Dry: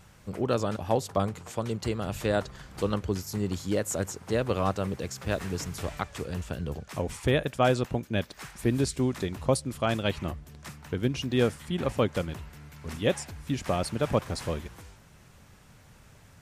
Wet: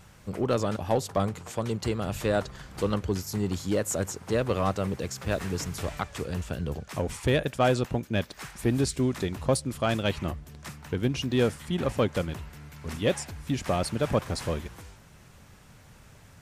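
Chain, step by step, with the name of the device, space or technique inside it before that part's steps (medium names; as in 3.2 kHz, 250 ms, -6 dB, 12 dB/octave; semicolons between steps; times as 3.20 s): parallel distortion (in parallel at -5 dB: hard clipper -24.5 dBFS, distortion -8 dB); on the sum: trim -2 dB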